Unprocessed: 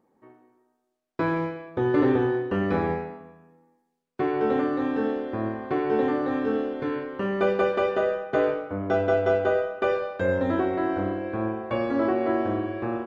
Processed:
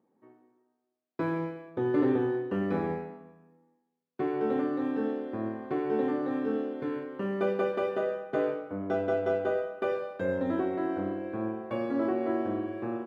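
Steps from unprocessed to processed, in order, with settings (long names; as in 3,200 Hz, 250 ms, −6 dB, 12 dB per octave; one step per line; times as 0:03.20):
running median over 5 samples
high-pass filter 170 Hz 12 dB per octave
low-shelf EQ 340 Hz +9 dB
level −8.5 dB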